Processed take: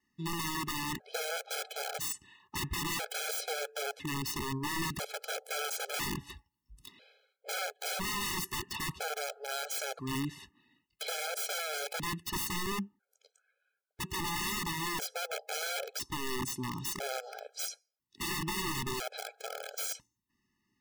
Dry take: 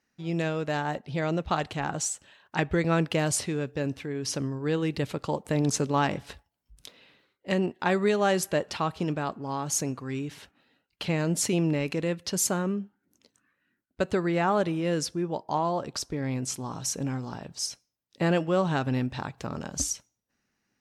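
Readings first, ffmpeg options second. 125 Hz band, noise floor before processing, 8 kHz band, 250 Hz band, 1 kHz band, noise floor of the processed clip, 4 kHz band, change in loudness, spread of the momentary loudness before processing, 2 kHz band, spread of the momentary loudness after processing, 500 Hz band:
-12.5 dB, -80 dBFS, -5.5 dB, -12.5 dB, -7.0 dB, -85 dBFS, +0.5 dB, -7.0 dB, 9 LU, -3.0 dB, 8 LU, -12.5 dB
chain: -af "adynamicequalizer=threshold=0.00316:dfrequency=120:dqfactor=4.9:tfrequency=120:tqfactor=4.9:attack=5:release=100:ratio=0.375:range=3:mode=cutabove:tftype=bell,aeval=exprs='(mod(22.4*val(0)+1,2)-1)/22.4':c=same,afftfilt=real='re*gt(sin(2*PI*0.5*pts/sr)*(1-2*mod(floor(b*sr/1024/430),2)),0)':imag='im*gt(sin(2*PI*0.5*pts/sr)*(1-2*mod(floor(b*sr/1024/430),2)),0)':win_size=1024:overlap=0.75"

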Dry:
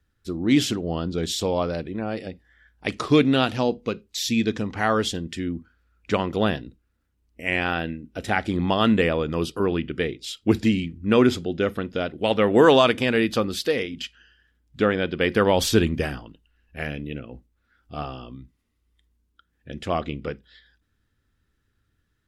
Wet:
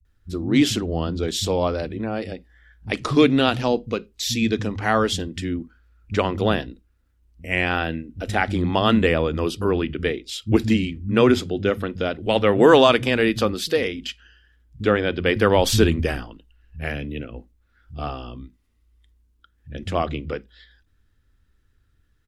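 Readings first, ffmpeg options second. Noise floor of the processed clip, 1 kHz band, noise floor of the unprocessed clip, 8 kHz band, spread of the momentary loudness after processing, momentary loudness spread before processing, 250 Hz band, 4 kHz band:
-64 dBFS, +2.0 dB, -72 dBFS, +2.0 dB, 15 LU, 15 LU, +1.0 dB, +2.0 dB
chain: -filter_complex "[0:a]lowshelf=f=71:g=11.5,acrossover=split=170[s0][s1];[s1]adelay=50[s2];[s0][s2]amix=inputs=2:normalize=0,volume=1.26"

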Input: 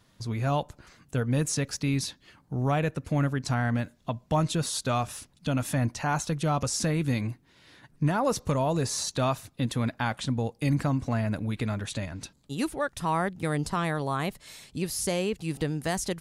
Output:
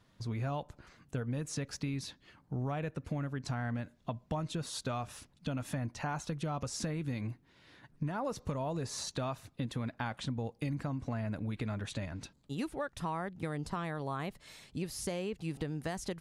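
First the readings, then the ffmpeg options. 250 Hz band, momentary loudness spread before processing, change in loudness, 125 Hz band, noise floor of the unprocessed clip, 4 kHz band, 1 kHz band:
-8.5 dB, 8 LU, -9.0 dB, -9.0 dB, -63 dBFS, -9.0 dB, -10.0 dB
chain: -af "highshelf=f=5400:g=-9,acompressor=threshold=0.0355:ratio=6,volume=0.668"

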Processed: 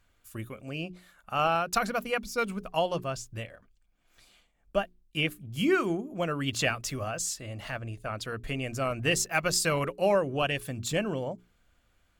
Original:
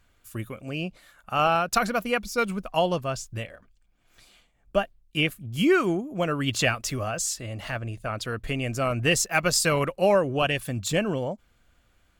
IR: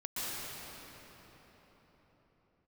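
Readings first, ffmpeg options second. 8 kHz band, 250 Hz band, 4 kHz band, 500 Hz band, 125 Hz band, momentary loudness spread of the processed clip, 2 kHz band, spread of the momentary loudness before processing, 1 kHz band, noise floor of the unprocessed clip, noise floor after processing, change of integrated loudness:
-4.0 dB, -5.0 dB, -4.0 dB, -4.0 dB, -5.0 dB, 12 LU, -4.0 dB, 12 LU, -4.0 dB, -65 dBFS, -69 dBFS, -4.0 dB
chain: -af "bandreject=f=60:t=h:w=6,bandreject=f=120:t=h:w=6,bandreject=f=180:t=h:w=6,bandreject=f=240:t=h:w=6,bandreject=f=300:t=h:w=6,bandreject=f=360:t=h:w=6,bandreject=f=420:t=h:w=6,volume=0.631"

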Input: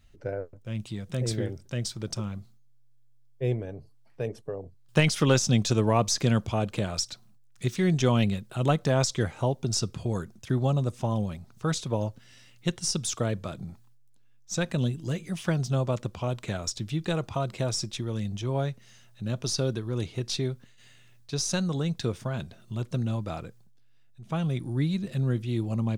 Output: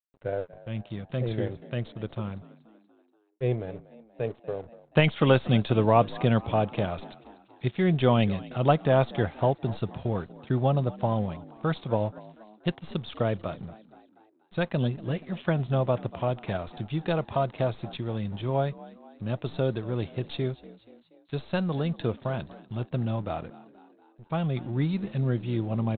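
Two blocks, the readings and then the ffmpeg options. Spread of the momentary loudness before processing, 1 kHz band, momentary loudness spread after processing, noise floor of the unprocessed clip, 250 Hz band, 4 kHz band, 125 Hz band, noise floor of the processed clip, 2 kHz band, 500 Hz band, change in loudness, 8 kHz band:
12 LU, +4.5 dB, 14 LU, -55 dBFS, 0.0 dB, -5.5 dB, -0.5 dB, -62 dBFS, +0.5 dB, +3.0 dB, +0.5 dB, under -40 dB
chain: -filter_complex "[0:a]adynamicequalizer=threshold=0.00631:dfrequency=710:dqfactor=1.3:tfrequency=710:tqfactor=1.3:attack=5:release=100:ratio=0.375:range=3:mode=boostabove:tftype=bell,aresample=8000,aeval=exprs='sgn(val(0))*max(abs(val(0))-0.00335,0)':c=same,aresample=44100,asplit=5[s0][s1][s2][s3][s4];[s1]adelay=239,afreqshift=54,volume=0.106[s5];[s2]adelay=478,afreqshift=108,volume=0.0569[s6];[s3]adelay=717,afreqshift=162,volume=0.0309[s7];[s4]adelay=956,afreqshift=216,volume=0.0166[s8];[s0][s5][s6][s7][s8]amix=inputs=5:normalize=0"

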